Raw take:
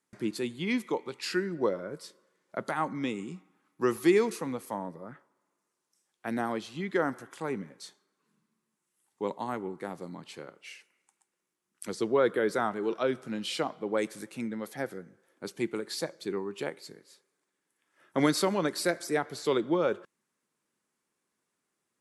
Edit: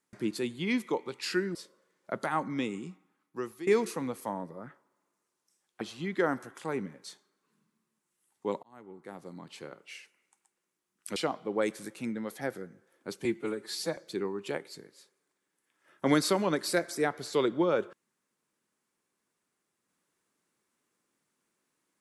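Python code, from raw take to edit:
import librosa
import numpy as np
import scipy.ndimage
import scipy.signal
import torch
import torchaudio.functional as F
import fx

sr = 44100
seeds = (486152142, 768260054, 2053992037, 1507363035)

y = fx.edit(x, sr, fx.cut(start_s=1.55, length_s=0.45),
    fx.fade_out_to(start_s=3.18, length_s=0.94, floor_db=-20.0),
    fx.cut(start_s=6.26, length_s=0.31),
    fx.fade_in_span(start_s=9.39, length_s=1.07),
    fx.cut(start_s=11.92, length_s=1.6),
    fx.stretch_span(start_s=15.61, length_s=0.48, factor=1.5), tone=tone)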